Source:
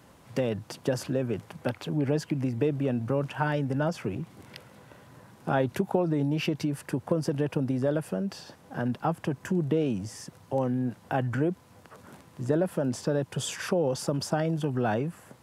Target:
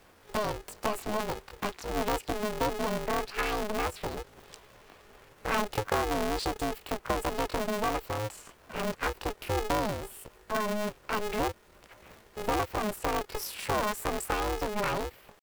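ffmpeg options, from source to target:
-af "asetrate=72056,aresample=44100,atempo=0.612027,aeval=exprs='val(0)*sgn(sin(2*PI*210*n/s))':c=same,volume=-3dB"

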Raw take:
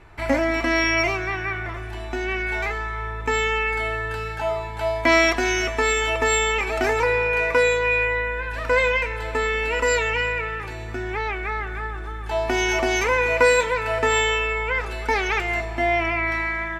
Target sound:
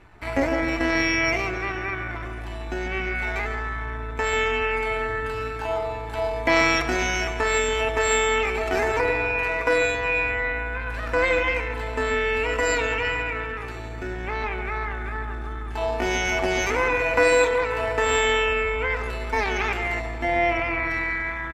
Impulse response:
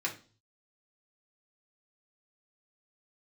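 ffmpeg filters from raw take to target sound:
-filter_complex "[0:a]tremolo=f=190:d=0.571,asplit=2[a][b];[b]adelay=107,lowpass=f=1.6k:p=1,volume=-6.5dB,asplit=2[c][d];[d]adelay=107,lowpass=f=1.6k:p=1,volume=0.47,asplit=2[e][f];[f]adelay=107,lowpass=f=1.6k:p=1,volume=0.47,asplit=2[g][h];[h]adelay=107,lowpass=f=1.6k:p=1,volume=0.47,asplit=2[i][j];[j]adelay=107,lowpass=f=1.6k:p=1,volume=0.47,asplit=2[k][l];[l]adelay=107,lowpass=f=1.6k:p=1,volume=0.47[m];[a][c][e][g][i][k][m]amix=inputs=7:normalize=0,atempo=0.78"

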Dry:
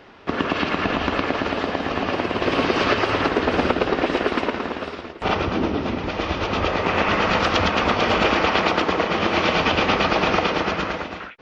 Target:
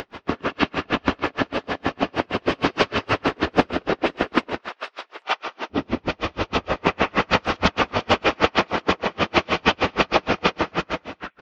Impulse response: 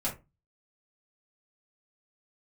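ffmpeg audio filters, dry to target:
-filter_complex "[0:a]asettb=1/sr,asplit=3[a][b][c];[a]atrim=end=4.584[d];[b]atrim=start=4.58:end=5.7,asetpts=PTS-STARTPTS,afade=t=in:d=0.004:c=qsin,afade=t=out:st=1.116:d=0.004:c=qsin,highpass=820[e];[c]atrim=start=5.696[f];[d][e]acrossfade=d=0.004:c1=hsin:c2=qsin[g];[g][f]acrossfade=d=0.004:c1=qsin:c2=hsin,acompressor=mode=upward:threshold=-28dB:ratio=2.5,asplit=2[h][i];[i]aecho=0:1:105:0.2[j];[h][j]amix=inputs=2:normalize=0,aeval=exprs='val(0)*pow(10,-39*(0.5-0.5*cos(2*PI*6.4*n/s))/20)':c=same,volume=5dB"

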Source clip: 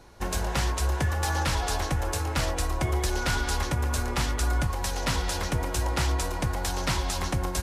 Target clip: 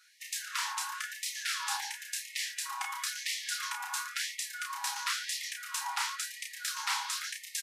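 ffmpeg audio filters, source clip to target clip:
-filter_complex "[0:a]asettb=1/sr,asplit=3[a][b][c];[a]atrim=end=1.774[d];[b]atrim=start=1.77:end=2.66,asetpts=PTS-STARTPTS,afade=t=in:d=0.004:c=qsin,afade=t=out:st=0.886:d=0.004:c=qsin,asuperstop=centerf=1200:order=8:qfactor=1.6[e];[c]atrim=start=2.656[f];[d][e]acrossfade=d=0.004:c1=hsin:c2=qsin[g];[g][f]acrossfade=d=0.004:c1=qsin:c2=hsin,asplit=2[h][i];[i]adelay=31,volume=-4dB[j];[h][j]amix=inputs=2:normalize=0,afftfilt=real='re*gte(b*sr/1024,740*pow(1800/740,0.5+0.5*sin(2*PI*0.97*pts/sr)))':imag='im*gte(b*sr/1024,740*pow(1800/740,0.5+0.5*sin(2*PI*0.97*pts/sr)))':win_size=1024:overlap=0.75,volume=-3dB"

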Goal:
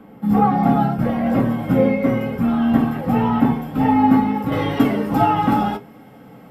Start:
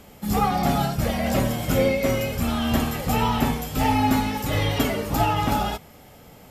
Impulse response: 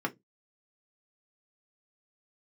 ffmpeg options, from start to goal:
-filter_complex "[0:a]asetnsamples=n=441:p=0,asendcmd='4.52 equalizer g -3.5',equalizer=f=7.1k:w=0.34:g=-12[a];[1:a]atrim=start_sample=2205,asetrate=43218,aresample=44100[b];[a][b]afir=irnorm=-1:irlink=0,volume=-3dB"

